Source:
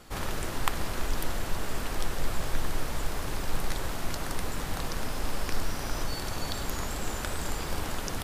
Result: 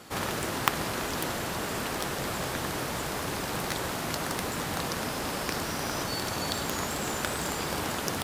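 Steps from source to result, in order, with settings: tracing distortion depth 0.052 ms; HPF 120 Hz 12 dB/oct; gain +4.5 dB

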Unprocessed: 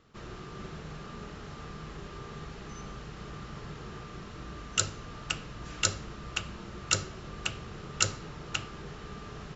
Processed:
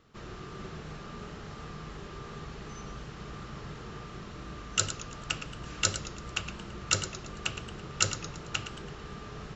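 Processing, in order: warbling echo 0.111 s, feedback 46%, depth 123 cents, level -11 dB

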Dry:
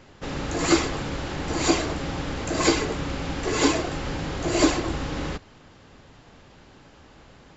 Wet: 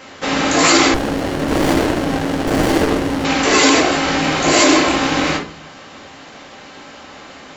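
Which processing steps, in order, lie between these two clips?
rattling part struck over -26 dBFS, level -26 dBFS; HPF 680 Hz 6 dB/oct; shoebox room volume 310 m³, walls furnished, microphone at 2.1 m; maximiser +15 dB; 0.94–3.25 running maximum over 33 samples; gain -1 dB

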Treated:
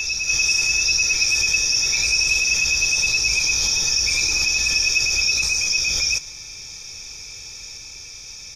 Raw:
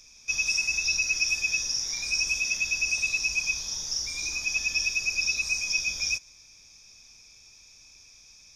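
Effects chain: low shelf 97 Hz -10 dB; comb 2.2 ms, depth 42%; in parallel at +1 dB: negative-ratio compressor -36 dBFS, ratio -1; on the sum: tone controls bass +6 dB, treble -1 dB; notch 970 Hz, Q 13; on a send: reverse echo 0.786 s -5 dB; on the sum: gain +5.5 dB

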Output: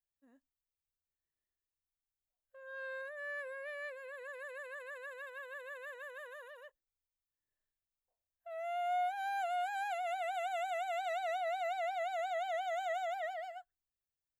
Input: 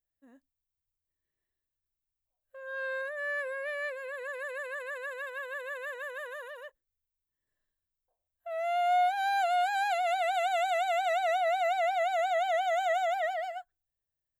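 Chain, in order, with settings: 8.54–10.93 bell 4300 Hz -8.5 dB 0.39 oct; gain -8.5 dB

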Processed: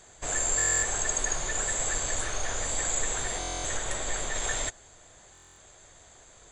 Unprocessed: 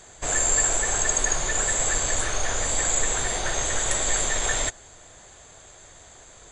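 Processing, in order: 3.77–4.35 high shelf 4100 Hz -5.5 dB; stuck buffer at 0.57/3.39/5.33, samples 1024, times 10; gain -5.5 dB

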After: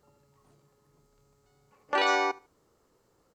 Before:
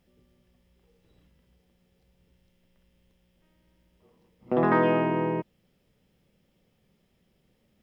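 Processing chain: on a send: feedback echo 0.175 s, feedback 23%, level -22 dB; on the sum: limiter -15.5 dBFS, peak gain reduction 6 dB; speed mistake 33 rpm record played at 78 rpm

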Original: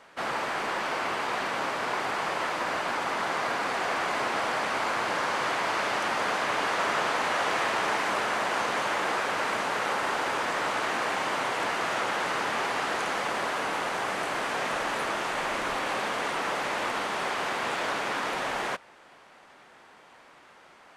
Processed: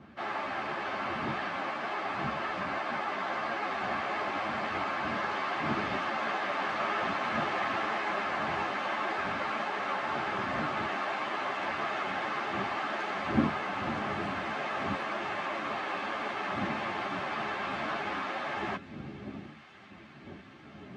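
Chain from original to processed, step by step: wind noise 250 Hz -37 dBFS; BPF 130–3500 Hz; notch comb 480 Hz; thin delay 1.107 s, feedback 79%, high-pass 2000 Hz, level -18.5 dB; ensemble effect

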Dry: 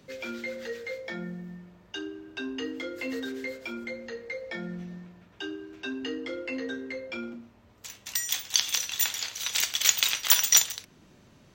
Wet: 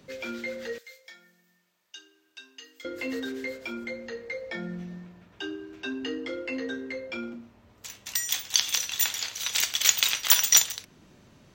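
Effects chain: 0.78–2.85 differentiator; gain +1 dB

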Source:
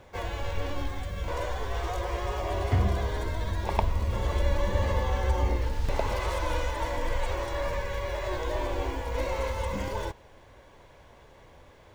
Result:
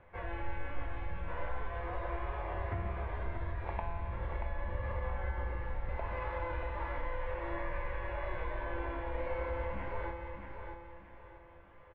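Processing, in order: LPF 2200 Hz 24 dB/oct; bell 300 Hz -6.5 dB 2.9 oct; compressor, threshold -29 dBFS, peak gain reduction 9 dB; resonator 170 Hz, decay 1.6 s, mix 90%; feedback echo 0.632 s, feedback 33%, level -6.5 dB; gain +14 dB

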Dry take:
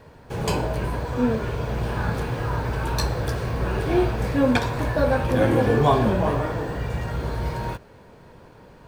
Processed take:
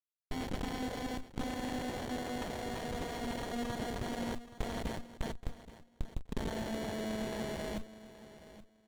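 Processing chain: vocoder on a gliding note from C4, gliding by -4 st; tilt shelf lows -7.5 dB, about 890 Hz; notches 50/100/150/200 Hz; in parallel at -1.5 dB: limiter -22.5 dBFS, peak gain reduction 11 dB; on the sum: negative-ratio compressor -32 dBFS, ratio -1; Schmitt trigger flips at -28.5 dBFS; requantised 8-bit, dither none; on a send: feedback echo 0.825 s, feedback 17%, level -15.5 dB; on the sum: inverted band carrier 3800 Hz; running maximum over 33 samples; gain -1 dB

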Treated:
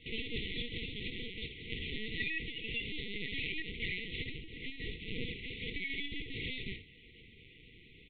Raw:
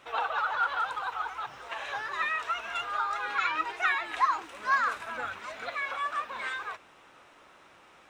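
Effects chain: spectral whitening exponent 0.3; dynamic EQ 1900 Hz, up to -3 dB, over -43 dBFS, Q 1.5; compressor 8:1, threshold -33 dBFS, peak gain reduction 13.5 dB; flange 0.36 Hz, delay 2.2 ms, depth 8.7 ms, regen +34%; air absorption 160 m; early reflections 12 ms -17.5 dB, 67 ms -10 dB; LPC vocoder at 8 kHz pitch kept; brick-wall FIR band-stop 500–1900 Hz; gain +9 dB

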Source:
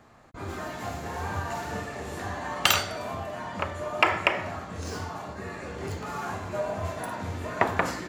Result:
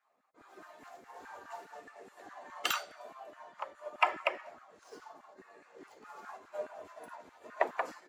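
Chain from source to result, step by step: bin magnitudes rounded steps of 15 dB; LFO high-pass saw down 4.8 Hz 260–1600 Hz; upward expander 1.5:1, over -40 dBFS; gain -8.5 dB

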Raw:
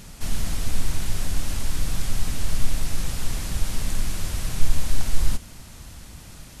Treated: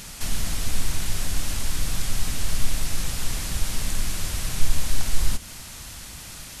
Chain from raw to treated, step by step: mismatched tape noise reduction encoder only; gain -1.5 dB

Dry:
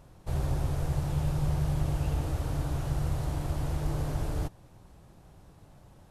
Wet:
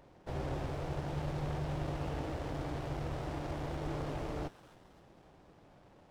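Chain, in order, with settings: three-band isolator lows -13 dB, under 220 Hz, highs -22 dB, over 5700 Hz; thin delay 0.27 s, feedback 45%, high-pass 2300 Hz, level -5.5 dB; running maximum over 17 samples; gain +1 dB

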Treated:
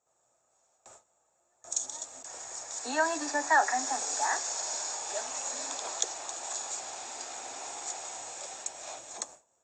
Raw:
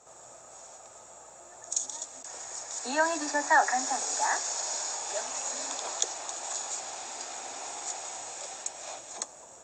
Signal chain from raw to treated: gate with hold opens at -37 dBFS; gain -1.5 dB

